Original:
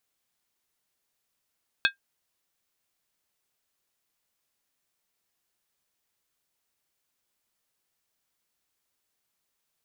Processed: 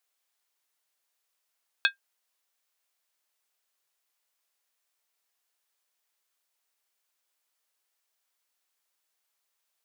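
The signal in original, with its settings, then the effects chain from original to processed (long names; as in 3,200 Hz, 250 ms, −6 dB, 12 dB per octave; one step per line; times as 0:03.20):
struck skin, lowest mode 1,600 Hz, decay 0.12 s, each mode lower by 2.5 dB, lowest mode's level −16 dB
high-pass filter 530 Hz 12 dB per octave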